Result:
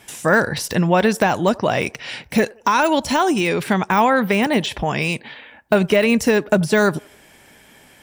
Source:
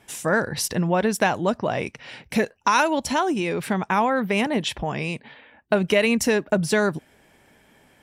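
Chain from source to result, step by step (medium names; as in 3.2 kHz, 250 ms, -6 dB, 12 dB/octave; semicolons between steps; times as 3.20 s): de-esser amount 90%; treble shelf 2.1 kHz +8 dB; on a send: feedback echo behind a band-pass 86 ms, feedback 39%, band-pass 670 Hz, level -22.5 dB; on the sum: trim +5 dB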